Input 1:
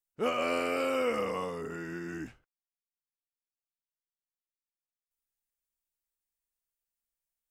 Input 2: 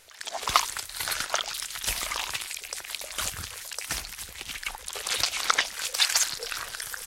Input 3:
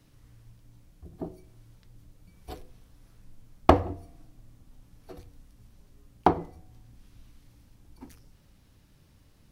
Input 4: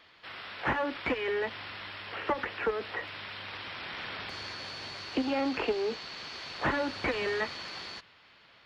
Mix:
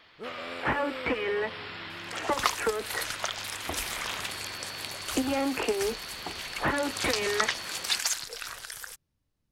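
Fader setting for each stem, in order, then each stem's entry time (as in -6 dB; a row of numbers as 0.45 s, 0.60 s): -10.0 dB, -5.0 dB, -19.5 dB, +1.5 dB; 0.00 s, 1.90 s, 0.00 s, 0.00 s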